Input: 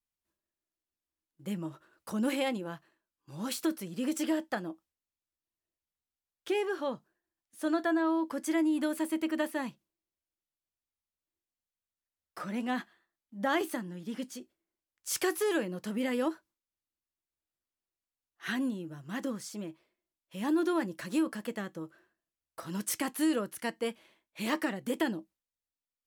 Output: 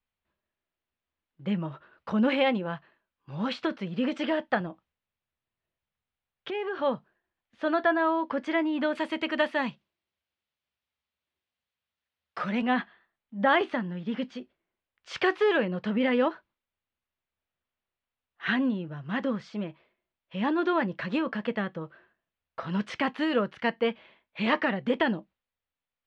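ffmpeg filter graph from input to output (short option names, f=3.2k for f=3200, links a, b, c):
-filter_complex "[0:a]asettb=1/sr,asplit=3[a][b][c];[a]atrim=end=4.604[d];[b]atrim=start=4.6:end=6.82,asetpts=PTS-STARTPTS,afade=t=in:d=0.004:c=qsin,afade=t=out:st=2.216:d=0.004:c=qsin,equalizer=f=130:w=1.8:g=5.5,acompressor=threshold=-35dB:ratio=6:attack=3.2:release=140:knee=1:detection=peak[e];[c]atrim=start=6.816[f];[d][e]acrossfade=d=0.004:c1=hsin:c2=qsin[g];[g][f]acrossfade=d=0.004:c1=qsin:c2=hsin,asettb=1/sr,asplit=3[h][i][j];[h]atrim=end=8.954[k];[i]atrim=start=8.95:end=12.62,asetpts=PTS-STARTPTS,afade=t=in:d=0.004:c=qsin,afade=t=out:st=3.666:d=0.004:c=qsin,highpass=58,aemphasis=mode=production:type=75fm[l];[j]atrim=start=12.616[m];[k][l]acrossfade=d=0.004:c1=hsin:c2=qsin[n];[n][m]acrossfade=d=0.004:c1=qsin:c2=hsin,lowpass=f=3.4k:w=0.5412,lowpass=f=3.4k:w=1.3066,equalizer=f=320:w=4.3:g=-9.5,volume=8dB"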